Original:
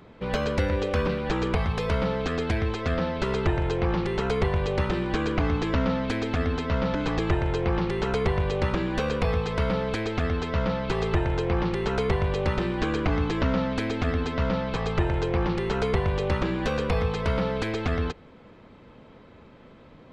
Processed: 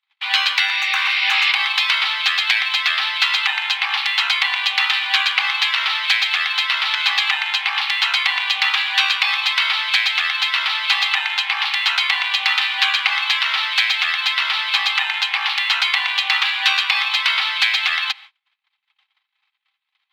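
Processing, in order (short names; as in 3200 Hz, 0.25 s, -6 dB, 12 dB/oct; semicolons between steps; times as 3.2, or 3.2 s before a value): median filter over 5 samples; gate -45 dBFS, range -42 dB; graphic EQ 1000/2000/4000 Hz -10/+6/+9 dB; spectral repair 0.72–1.49, 1800–5700 Hz both; rippled Chebyshev high-pass 770 Hz, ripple 6 dB; maximiser +17.5 dB; gain -1 dB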